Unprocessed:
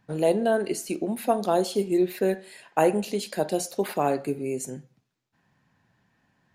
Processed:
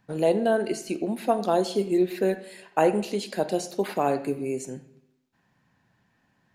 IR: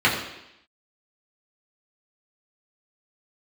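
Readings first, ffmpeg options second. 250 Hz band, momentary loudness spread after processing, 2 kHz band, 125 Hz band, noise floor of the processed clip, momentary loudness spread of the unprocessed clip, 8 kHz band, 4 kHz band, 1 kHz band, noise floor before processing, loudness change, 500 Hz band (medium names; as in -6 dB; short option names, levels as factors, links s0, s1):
0.0 dB, 8 LU, 0.0 dB, -0.5 dB, -69 dBFS, 8 LU, -4.0 dB, 0.0 dB, 0.0 dB, -72 dBFS, 0.0 dB, 0.0 dB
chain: -filter_complex "[0:a]acrossover=split=7500[s0][s1];[s1]acompressor=threshold=0.00355:ratio=4:attack=1:release=60[s2];[s0][s2]amix=inputs=2:normalize=0,bandreject=f=50:t=h:w=6,bandreject=f=100:t=h:w=6,bandreject=f=150:t=h:w=6,asplit=2[s3][s4];[1:a]atrim=start_sample=2205,adelay=81[s5];[s4][s5]afir=irnorm=-1:irlink=0,volume=0.0178[s6];[s3][s6]amix=inputs=2:normalize=0"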